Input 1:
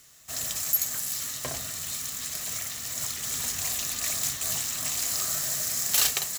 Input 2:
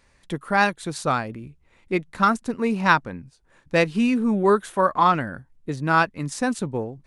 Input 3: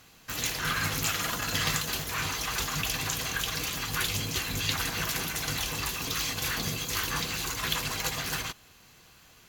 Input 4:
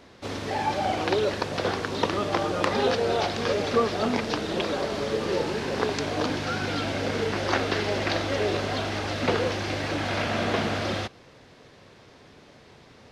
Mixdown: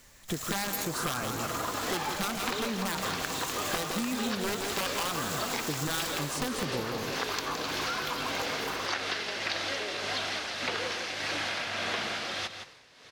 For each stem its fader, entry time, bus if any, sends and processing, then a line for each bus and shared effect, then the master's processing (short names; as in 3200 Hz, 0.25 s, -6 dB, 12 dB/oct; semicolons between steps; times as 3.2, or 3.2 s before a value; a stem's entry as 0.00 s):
-7.5 dB, 0.00 s, no send, no echo send, half-waves squared off
+0.5 dB, 0.00 s, no send, echo send -8 dB, compressor 4:1, threshold -21 dBFS, peak gain reduction 8.5 dB; wrapped overs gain 17 dB
-7.5 dB, 0.35 s, no send, no echo send, band shelf 570 Hz +14 dB 2.8 oct
-1.0 dB, 1.40 s, no send, echo send -10 dB, tilt shelf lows -8.5 dB, about 800 Hz; tremolo 1.7 Hz, depth 62%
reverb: off
echo: echo 0.165 s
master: compressor 6:1, threshold -29 dBFS, peak gain reduction 12.5 dB